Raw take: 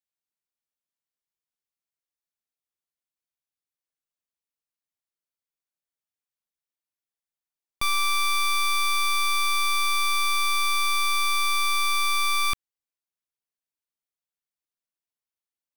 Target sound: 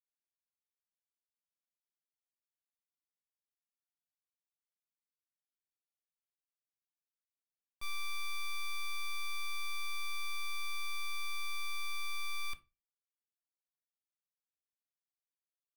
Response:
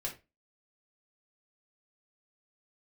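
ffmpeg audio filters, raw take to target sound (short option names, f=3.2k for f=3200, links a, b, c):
-filter_complex "[0:a]agate=range=-33dB:threshold=-8dB:ratio=3:detection=peak,asplit=2[a][b];[1:a]atrim=start_sample=2205[c];[b][c]afir=irnorm=-1:irlink=0,volume=-5.5dB[d];[a][d]amix=inputs=2:normalize=0,volume=8dB"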